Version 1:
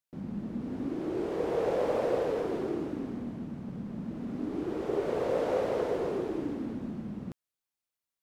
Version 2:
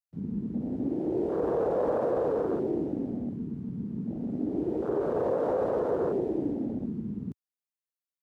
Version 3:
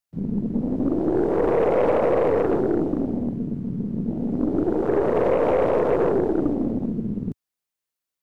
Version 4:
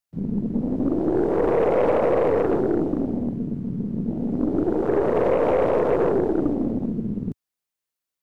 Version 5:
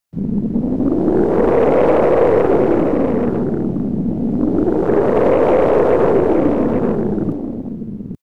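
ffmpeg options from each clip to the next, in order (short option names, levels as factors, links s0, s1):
-af "afwtdn=0.02,highshelf=f=6900:g=5.5,alimiter=limit=0.0668:level=0:latency=1:release=28,volume=1.58"
-af "aeval=exprs='0.106*(cos(1*acos(clip(val(0)/0.106,-1,1)))-cos(1*PI/2))+0.0119*(cos(4*acos(clip(val(0)/0.106,-1,1)))-cos(4*PI/2))':c=same,volume=2.37"
-af anull
-af "aecho=1:1:830:0.473,volume=2.11"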